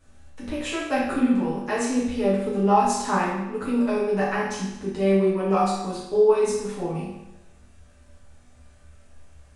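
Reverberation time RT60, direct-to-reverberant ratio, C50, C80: 0.95 s, −9.5 dB, 1.0 dB, 4.0 dB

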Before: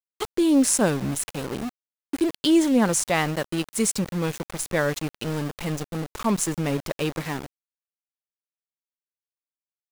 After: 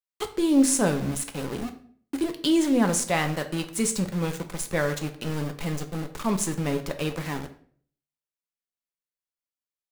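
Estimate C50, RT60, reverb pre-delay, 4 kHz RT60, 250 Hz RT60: 12.5 dB, 0.50 s, 4 ms, 0.40 s, 0.60 s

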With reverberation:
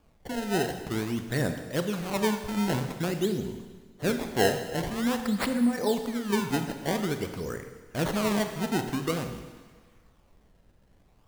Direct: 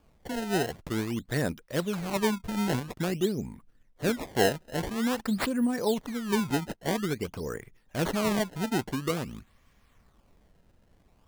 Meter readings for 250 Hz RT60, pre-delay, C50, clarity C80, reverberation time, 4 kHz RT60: 1.4 s, 24 ms, 8.0 dB, 9.5 dB, 1.5 s, 1.5 s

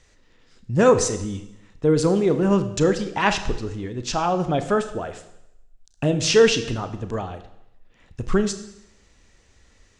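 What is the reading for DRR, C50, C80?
9.0 dB, 12.0 dB, 14.0 dB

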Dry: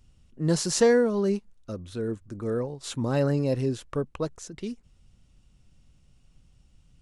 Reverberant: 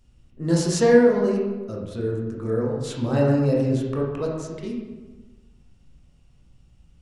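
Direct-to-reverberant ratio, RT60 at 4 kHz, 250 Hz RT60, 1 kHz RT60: −3.0 dB, 0.80 s, 1.5 s, 1.2 s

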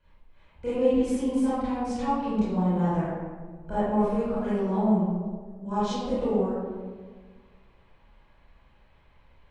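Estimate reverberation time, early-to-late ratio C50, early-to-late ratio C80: 1.6 s, −5.0 dB, −0.5 dB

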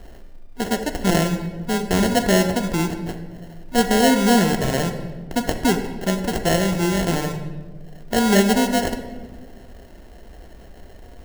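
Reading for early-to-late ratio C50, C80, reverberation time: 8.5 dB, 10.5 dB, 1.4 s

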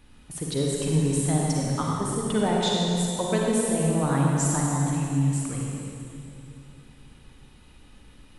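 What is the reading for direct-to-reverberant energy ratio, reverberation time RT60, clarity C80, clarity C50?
−3.0 dB, 2.8 s, −1.0 dB, −2.0 dB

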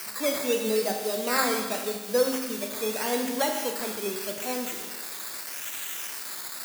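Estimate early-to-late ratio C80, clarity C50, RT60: 6.0 dB, 4.5 dB, 1.4 s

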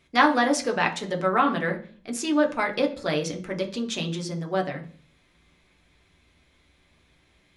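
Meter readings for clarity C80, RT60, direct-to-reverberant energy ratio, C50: 18.5 dB, 0.45 s, 2.0 dB, 13.5 dB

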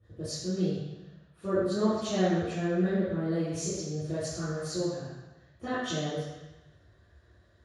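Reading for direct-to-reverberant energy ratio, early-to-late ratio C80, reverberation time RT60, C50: −16.0 dB, 0.5 dB, 1.0 s, −3.0 dB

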